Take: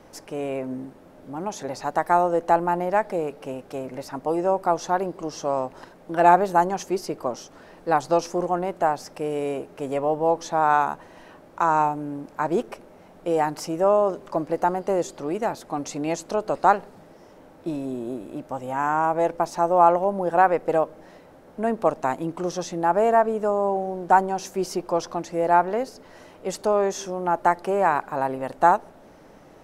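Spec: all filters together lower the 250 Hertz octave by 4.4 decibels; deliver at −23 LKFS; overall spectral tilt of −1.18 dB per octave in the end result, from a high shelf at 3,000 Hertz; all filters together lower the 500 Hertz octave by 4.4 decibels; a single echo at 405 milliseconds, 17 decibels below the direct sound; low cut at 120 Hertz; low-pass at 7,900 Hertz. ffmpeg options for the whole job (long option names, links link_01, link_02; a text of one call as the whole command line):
ffmpeg -i in.wav -af "highpass=120,lowpass=7900,equalizer=frequency=250:width_type=o:gain=-4,equalizer=frequency=500:width_type=o:gain=-4.5,highshelf=frequency=3000:gain=-9,aecho=1:1:405:0.141,volume=4dB" out.wav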